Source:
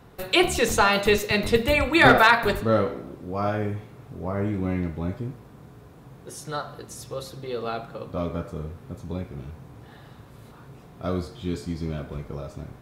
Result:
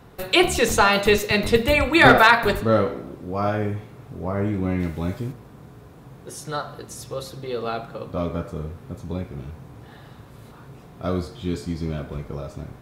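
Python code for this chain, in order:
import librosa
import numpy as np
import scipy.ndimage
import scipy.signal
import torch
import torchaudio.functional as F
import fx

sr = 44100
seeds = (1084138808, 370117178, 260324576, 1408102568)

y = fx.high_shelf(x, sr, hz=2800.0, db=10.0, at=(4.79, 5.31), fade=0.02)
y = y * librosa.db_to_amplitude(2.5)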